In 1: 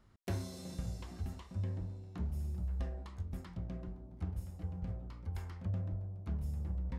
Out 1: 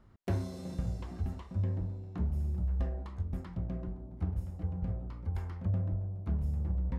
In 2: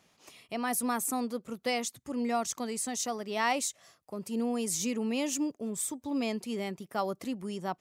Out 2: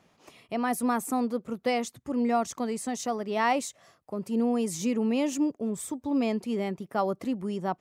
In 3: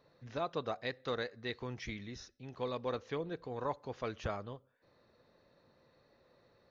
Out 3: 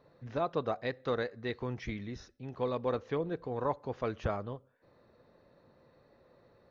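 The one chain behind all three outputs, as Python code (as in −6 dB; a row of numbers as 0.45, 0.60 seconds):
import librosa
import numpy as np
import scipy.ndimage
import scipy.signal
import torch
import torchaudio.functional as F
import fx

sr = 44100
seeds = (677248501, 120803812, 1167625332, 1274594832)

y = fx.high_shelf(x, sr, hz=2400.0, db=-11.0)
y = F.gain(torch.from_numpy(y), 5.5).numpy()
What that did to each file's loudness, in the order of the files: +5.5, +3.5, +4.5 LU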